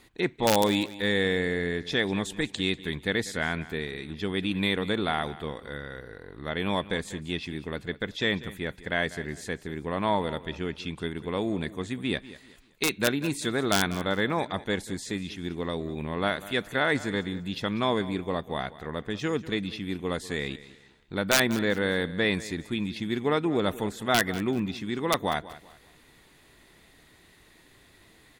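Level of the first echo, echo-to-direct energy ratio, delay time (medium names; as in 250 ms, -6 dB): -17.0 dB, -16.5 dB, 193 ms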